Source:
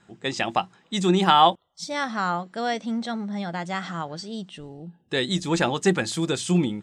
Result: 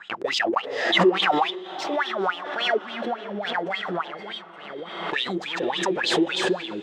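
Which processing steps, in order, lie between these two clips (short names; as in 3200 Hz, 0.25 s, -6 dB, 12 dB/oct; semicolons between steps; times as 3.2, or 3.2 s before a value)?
high shelf 5100 Hz -4 dB; sample leveller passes 5; compressor 2:1, threshold -11 dBFS, peak gain reduction 3 dB; wah 3.5 Hz 350–3400 Hz, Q 9.5; diffused feedback echo 0.5 s, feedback 45%, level -16 dB; backwards sustainer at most 48 dB/s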